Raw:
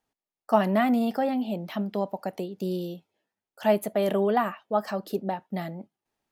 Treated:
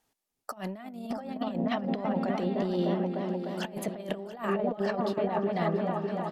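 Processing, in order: treble shelf 4.6 kHz +7 dB; on a send: delay with an opening low-pass 301 ms, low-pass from 400 Hz, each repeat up 1 oct, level -6 dB; on the sum: compressor with a negative ratio -30 dBFS, ratio -0.5; delay 684 ms -17 dB; low-pass that closes with the level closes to 3 kHz, closed at -24 dBFS

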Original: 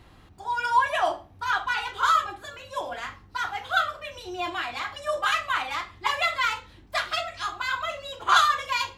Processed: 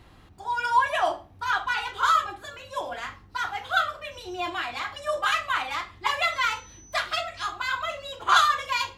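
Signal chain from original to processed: 6.31–6.98 s: whistle 6 kHz -49 dBFS

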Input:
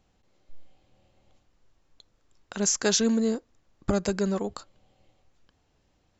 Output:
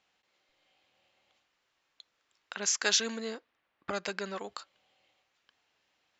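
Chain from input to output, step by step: band-pass filter 2.5 kHz, Q 0.84; 2.54–4.39 s: level-controlled noise filter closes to 2.5 kHz, open at -28 dBFS; trim +3.5 dB

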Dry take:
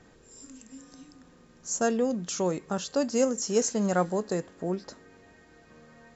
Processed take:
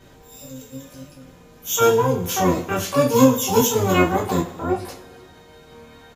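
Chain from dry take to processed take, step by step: harmony voices -12 st -4 dB, +12 st -1 dB; two-slope reverb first 0.27 s, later 1.6 s, from -20 dB, DRR -4.5 dB; trim -1 dB

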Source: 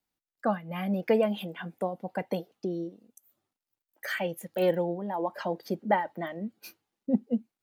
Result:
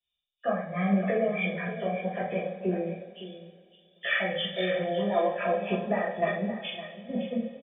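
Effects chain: knee-point frequency compression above 2.1 kHz 4:1; band-stop 1.1 kHz, Q 7.1; comb 1.7 ms, depth 88%; in parallel at -0.5 dB: peak limiter -21.5 dBFS, peak gain reduction 11 dB; on the sum: compression, threshold -23 dBFS, peak gain reduction 9.5 dB; on a send: delay 560 ms -10.5 dB; on the sum: two-slope reverb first 0.48 s, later 3.9 s, from -18 dB, DRR -7 dB; three bands expanded up and down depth 40%; trim -7.5 dB

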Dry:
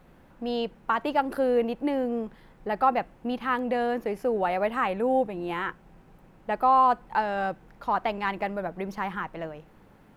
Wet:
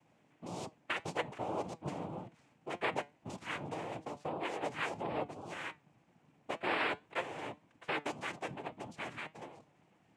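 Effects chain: harmonic-percussive split harmonic -5 dB; noise-vocoded speech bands 4; flange 1.8 Hz, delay 5.6 ms, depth 1.4 ms, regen +82%; trim -5 dB

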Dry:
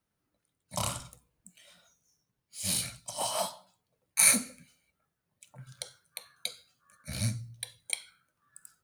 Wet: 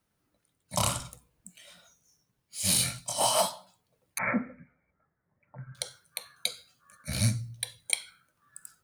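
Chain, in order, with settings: 2.77–3.41 s: doubling 24 ms -2.5 dB; 4.18–5.75 s: steep low-pass 2.1 kHz 72 dB/octave; trim +5 dB

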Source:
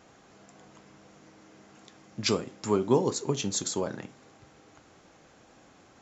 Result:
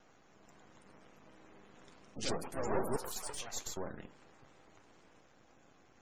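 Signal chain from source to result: single-diode clipper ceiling -24 dBFS; ever faster or slower copies 430 ms, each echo +4 st, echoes 3; 2.96–3.77 s: high-pass 880 Hz 12 dB/octave; half-wave rectifier; spectral gate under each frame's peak -30 dB strong; trim -3.5 dB

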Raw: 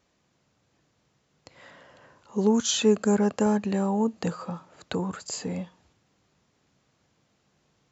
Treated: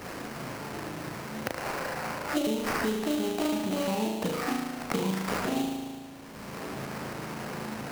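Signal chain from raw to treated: pitch shift switched off and on +6.5 st, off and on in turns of 176 ms; compression, threshold -28 dBFS, peak gain reduction 12.5 dB; on a send: flutter echo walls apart 6.3 m, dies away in 0.92 s; on the sum: sample-rate reducer 3.5 kHz, jitter 20%; three bands compressed up and down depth 100%

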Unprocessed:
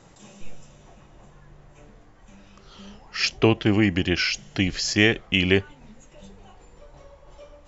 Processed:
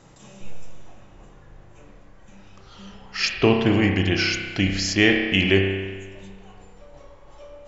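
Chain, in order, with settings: spring tank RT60 1.4 s, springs 31 ms, chirp 50 ms, DRR 2.5 dB

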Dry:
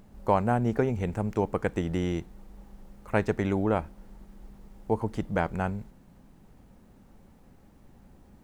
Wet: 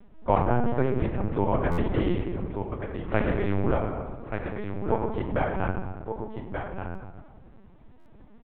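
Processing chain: delay 1178 ms -7 dB; on a send at -2 dB: reverberation RT60 1.7 s, pre-delay 3 ms; on the sum: LPC vocoder at 8 kHz pitch kept; buffer glitch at 1.71/6.88/7.99 s, samples 512, times 5

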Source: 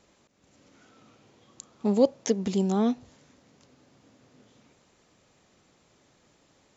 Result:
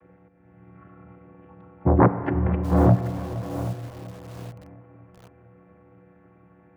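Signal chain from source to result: vocoder on a held chord minor triad, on G#3; 2.22–2.72 s: compressor with a negative ratio -34 dBFS, ratio -1; sine folder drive 8 dB, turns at -11.5 dBFS; multi-head delay 233 ms, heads second and third, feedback 43%, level -17 dB; Schroeder reverb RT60 3.1 s, combs from 32 ms, DRR 10.5 dB; mistuned SSB -130 Hz 260–2300 Hz; bit-crushed delay 782 ms, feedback 35%, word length 6-bit, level -14 dB; trim +3.5 dB

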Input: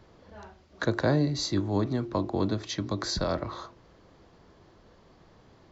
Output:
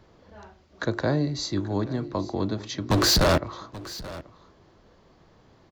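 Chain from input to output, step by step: 2.90–3.38 s: waveshaping leveller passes 5; on a send: delay 832 ms -17.5 dB

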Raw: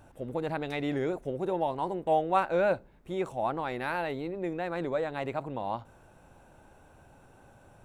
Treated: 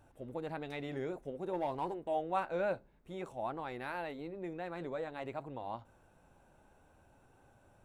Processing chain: 1.53–1.94 s: waveshaping leveller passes 1; flange 0.54 Hz, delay 2.3 ms, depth 3 ms, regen -76%; trim -4 dB

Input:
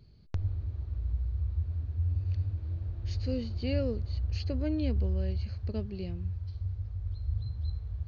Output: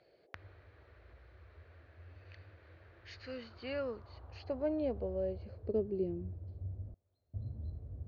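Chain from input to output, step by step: band-pass sweep 1.8 kHz -> 260 Hz, 3.06–6.64 s; band noise 320–670 Hz -77 dBFS; 6.94–7.34 s: differentiator; trim +8.5 dB

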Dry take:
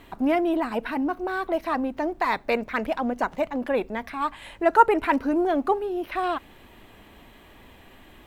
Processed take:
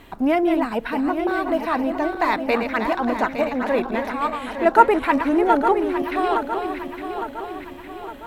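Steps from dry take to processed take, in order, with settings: backward echo that repeats 430 ms, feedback 70%, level -7 dB; trim +3 dB

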